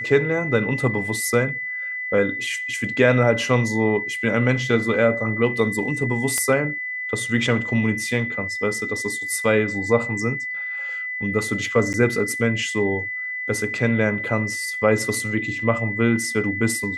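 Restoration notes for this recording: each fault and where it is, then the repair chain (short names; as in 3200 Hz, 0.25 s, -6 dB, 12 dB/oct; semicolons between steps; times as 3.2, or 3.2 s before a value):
tone 2000 Hz -26 dBFS
6.38 pop -8 dBFS
11.93–11.94 gap 9.3 ms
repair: de-click; notch 2000 Hz, Q 30; interpolate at 11.93, 9.3 ms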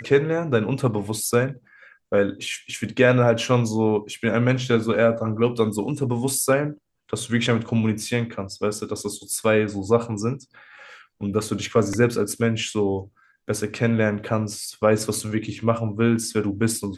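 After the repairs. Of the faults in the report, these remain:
none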